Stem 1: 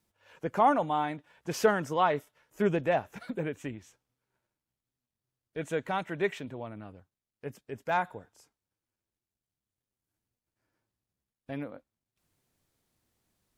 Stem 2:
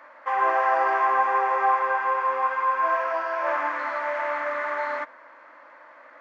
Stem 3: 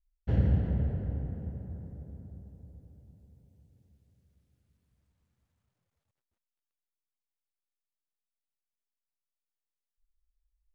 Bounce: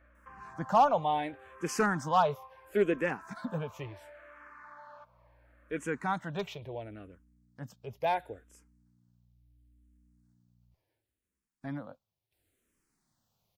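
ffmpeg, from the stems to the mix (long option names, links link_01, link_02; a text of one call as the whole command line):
ffmpeg -i stem1.wav -i stem2.wav -i stem3.wav -filter_complex "[0:a]asoftclip=type=hard:threshold=-18dB,adelay=150,volume=2dB[link_01];[1:a]bandreject=frequency=2000:width=7.4,volume=-13.5dB[link_02];[2:a]volume=-18dB[link_03];[link_02][link_03]amix=inputs=2:normalize=0,aeval=exprs='val(0)+0.000891*(sin(2*PI*60*n/s)+sin(2*PI*2*60*n/s)/2+sin(2*PI*3*60*n/s)/3+sin(2*PI*4*60*n/s)/4+sin(2*PI*5*60*n/s)/5)':channel_layout=same,acompressor=threshold=-48dB:ratio=3,volume=0dB[link_04];[link_01][link_04]amix=inputs=2:normalize=0,asplit=2[link_05][link_06];[link_06]afreqshift=-0.72[link_07];[link_05][link_07]amix=inputs=2:normalize=1" out.wav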